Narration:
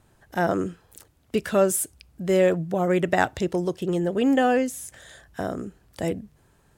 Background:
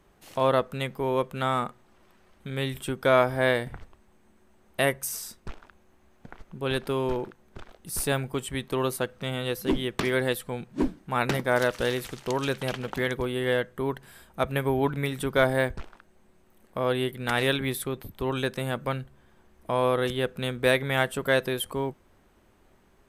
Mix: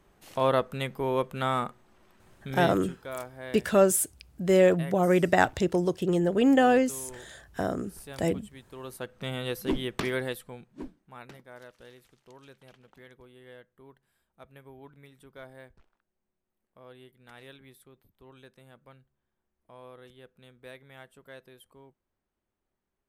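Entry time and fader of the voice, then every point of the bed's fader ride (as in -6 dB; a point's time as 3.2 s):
2.20 s, -0.5 dB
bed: 2.71 s -1.5 dB
2.97 s -17.5 dB
8.74 s -17.5 dB
9.22 s -3 dB
10.03 s -3 dB
11.47 s -24.5 dB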